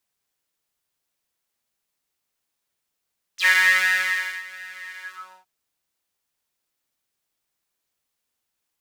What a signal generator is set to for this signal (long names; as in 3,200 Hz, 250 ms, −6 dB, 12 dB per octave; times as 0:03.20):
subtractive patch with pulse-width modulation F#3, oscillator 2 square, interval 0 semitones, detune 12 cents, oscillator 2 level −2 dB, filter highpass, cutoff 800 Hz, Q 11, filter envelope 3 octaves, filter decay 0.06 s, attack 87 ms, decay 0.96 s, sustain −22.5 dB, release 0.44 s, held 1.63 s, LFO 1.4 Hz, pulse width 23%, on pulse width 6%